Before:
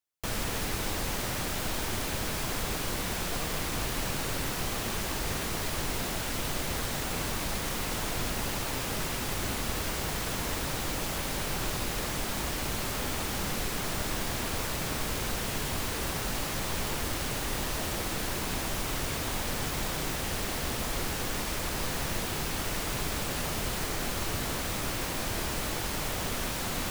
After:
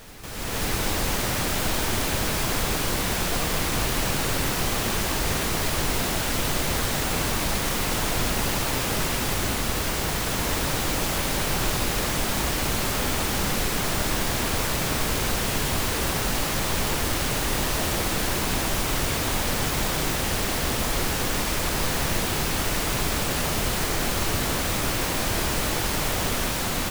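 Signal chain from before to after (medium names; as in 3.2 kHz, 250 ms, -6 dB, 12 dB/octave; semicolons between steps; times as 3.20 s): level rider gain up to 14.5 dB; reverse echo 540 ms -18 dB; trim -7 dB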